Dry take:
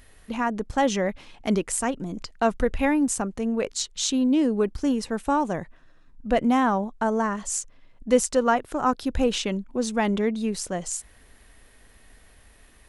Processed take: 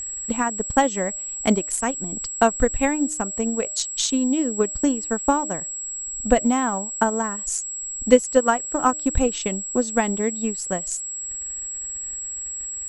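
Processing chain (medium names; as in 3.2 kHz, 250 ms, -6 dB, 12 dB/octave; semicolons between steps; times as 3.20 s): transient shaper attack +9 dB, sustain -9 dB; de-hum 305.4 Hz, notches 2; whistle 7.7 kHz -27 dBFS; trim -1.5 dB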